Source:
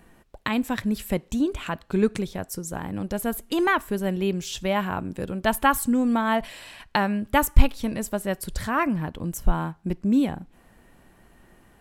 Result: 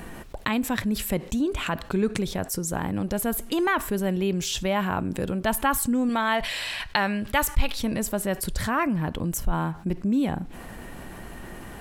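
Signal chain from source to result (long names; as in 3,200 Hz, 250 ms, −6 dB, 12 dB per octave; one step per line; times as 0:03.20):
0:06.09–0:07.79: graphic EQ with 10 bands 250 Hz −6 dB, 2,000 Hz +4 dB, 4,000 Hz +6 dB
envelope flattener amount 50%
level −8.5 dB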